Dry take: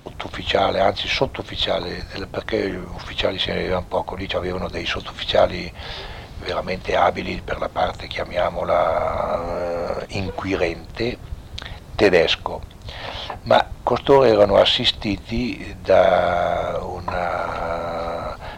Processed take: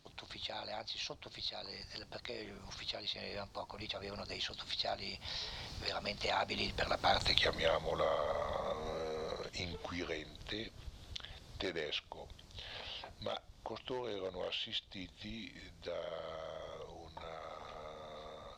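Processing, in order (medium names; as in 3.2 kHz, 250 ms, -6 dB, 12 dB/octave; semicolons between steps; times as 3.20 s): Doppler pass-by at 7.32 s, 32 m/s, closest 5.3 m; peaking EQ 4.7 kHz +12.5 dB 1.5 oct; compression 2:1, threshold -56 dBFS, peak gain reduction 20.5 dB; trim +11.5 dB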